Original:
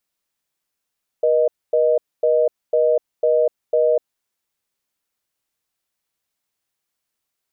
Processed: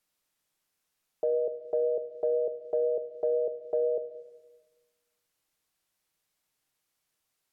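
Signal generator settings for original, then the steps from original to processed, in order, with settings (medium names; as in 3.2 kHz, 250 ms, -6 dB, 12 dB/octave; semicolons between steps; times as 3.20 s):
call progress tone reorder tone, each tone -16 dBFS 2.83 s
low-pass that closes with the level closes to 420 Hz, closed at -13 dBFS; peak limiter -21.5 dBFS; simulated room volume 690 m³, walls mixed, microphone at 0.51 m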